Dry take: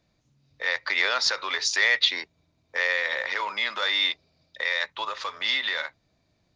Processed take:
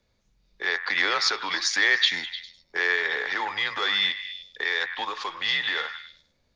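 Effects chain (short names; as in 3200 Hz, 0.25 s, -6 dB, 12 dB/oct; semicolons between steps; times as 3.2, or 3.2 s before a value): frequency shift -95 Hz; delay with a stepping band-pass 0.101 s, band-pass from 1400 Hz, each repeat 0.7 oct, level -8 dB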